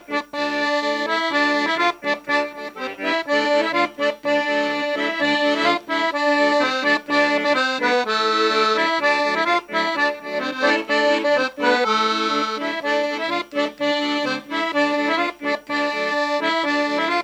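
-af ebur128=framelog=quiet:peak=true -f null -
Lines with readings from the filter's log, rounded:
Integrated loudness:
  I:         -19.8 LUFS
  Threshold: -29.8 LUFS
Loudness range:
  LRA:         3.2 LU
  Threshold: -39.7 LUFS
  LRA low:   -21.4 LUFS
  LRA high:  -18.2 LUFS
True peak:
  Peak:       -6.2 dBFS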